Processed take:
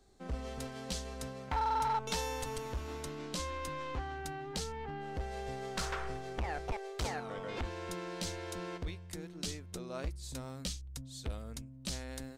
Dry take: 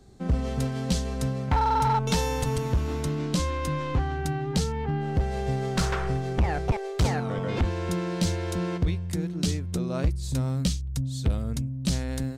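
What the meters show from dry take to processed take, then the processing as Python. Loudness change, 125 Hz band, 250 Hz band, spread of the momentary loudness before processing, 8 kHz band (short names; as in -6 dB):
-12.0 dB, -17.5 dB, -15.5 dB, 4 LU, -7.0 dB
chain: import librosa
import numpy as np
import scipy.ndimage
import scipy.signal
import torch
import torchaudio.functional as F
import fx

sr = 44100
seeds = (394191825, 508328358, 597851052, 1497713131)

y = fx.peak_eq(x, sr, hz=130.0, db=-13.5, octaves=2.1)
y = F.gain(torch.from_numpy(y), -7.0).numpy()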